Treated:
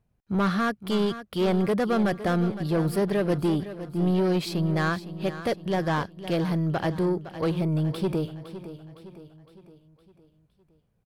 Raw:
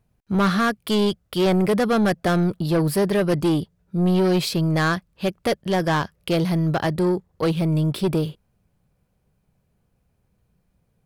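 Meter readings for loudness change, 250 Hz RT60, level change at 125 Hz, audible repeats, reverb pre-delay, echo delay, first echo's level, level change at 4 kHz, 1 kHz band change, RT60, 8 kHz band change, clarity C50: −4.5 dB, no reverb audible, −4.5 dB, 4, no reverb audible, 511 ms, −13.0 dB, −7.5 dB, −4.5 dB, no reverb audible, −9.5 dB, no reverb audible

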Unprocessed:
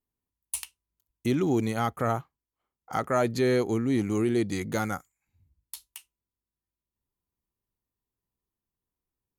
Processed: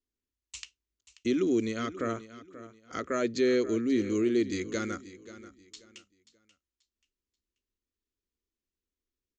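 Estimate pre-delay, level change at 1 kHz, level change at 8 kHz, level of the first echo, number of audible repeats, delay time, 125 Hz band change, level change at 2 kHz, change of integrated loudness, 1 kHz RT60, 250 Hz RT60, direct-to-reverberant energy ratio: no reverb audible, −9.0 dB, −5.0 dB, −15.5 dB, 2, 534 ms, −11.0 dB, −2.5 dB, −2.0 dB, no reverb audible, no reverb audible, no reverb audible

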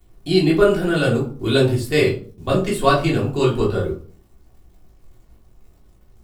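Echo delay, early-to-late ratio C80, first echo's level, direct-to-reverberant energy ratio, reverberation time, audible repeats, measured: no echo audible, 13.5 dB, no echo audible, −5.5 dB, 0.45 s, no echo audible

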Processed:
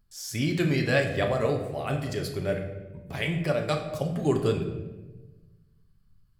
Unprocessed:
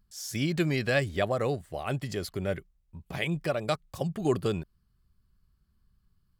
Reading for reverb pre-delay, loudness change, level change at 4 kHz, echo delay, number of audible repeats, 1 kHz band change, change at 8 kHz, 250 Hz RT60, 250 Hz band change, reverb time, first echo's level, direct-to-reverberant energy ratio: 7 ms, +2.5 dB, +1.5 dB, no echo audible, no echo audible, +1.5 dB, +1.0 dB, 1.6 s, +3.0 dB, 1.2 s, no echo audible, 4.0 dB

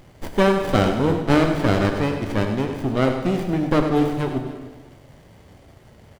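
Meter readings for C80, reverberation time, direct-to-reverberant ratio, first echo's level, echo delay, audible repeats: 5.5 dB, 1.4 s, 3.0 dB, −9.5 dB, 98 ms, 2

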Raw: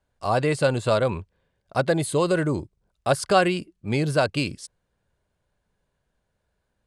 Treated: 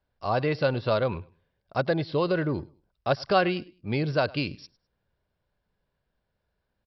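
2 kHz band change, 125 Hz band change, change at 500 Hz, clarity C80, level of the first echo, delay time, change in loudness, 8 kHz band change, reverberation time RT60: −3.5 dB, −3.5 dB, −3.5 dB, no reverb audible, −23.0 dB, 103 ms, −3.5 dB, below −25 dB, no reverb audible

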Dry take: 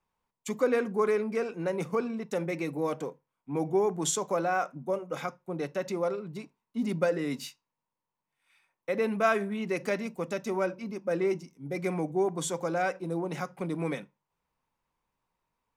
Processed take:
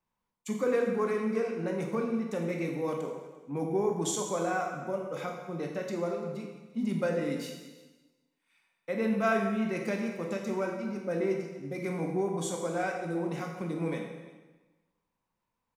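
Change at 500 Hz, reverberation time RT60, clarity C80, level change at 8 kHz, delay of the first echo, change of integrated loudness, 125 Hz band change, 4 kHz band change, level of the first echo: −2.0 dB, 1.2 s, 5.5 dB, −2.5 dB, 343 ms, −1.5 dB, +0.5 dB, −2.5 dB, −21.0 dB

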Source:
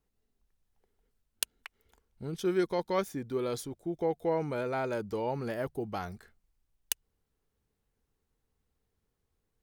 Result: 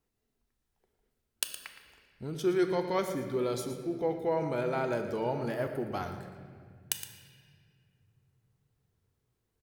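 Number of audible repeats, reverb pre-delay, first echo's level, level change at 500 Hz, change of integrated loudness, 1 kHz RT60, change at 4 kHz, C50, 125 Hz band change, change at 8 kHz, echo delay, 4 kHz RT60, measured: 1, 3 ms, −11.5 dB, +1.0 dB, +1.0 dB, 1.7 s, +1.0 dB, 6.5 dB, +1.0 dB, +0.5 dB, 116 ms, 1.5 s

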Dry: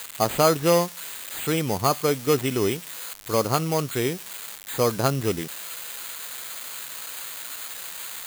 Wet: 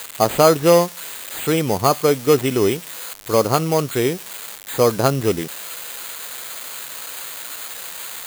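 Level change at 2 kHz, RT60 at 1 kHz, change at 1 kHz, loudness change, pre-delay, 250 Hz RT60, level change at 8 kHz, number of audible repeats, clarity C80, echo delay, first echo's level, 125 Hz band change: +4.0 dB, no reverb audible, +5.0 dB, +6.0 dB, no reverb audible, no reverb audible, +3.5 dB, no echo audible, no reverb audible, no echo audible, no echo audible, +4.0 dB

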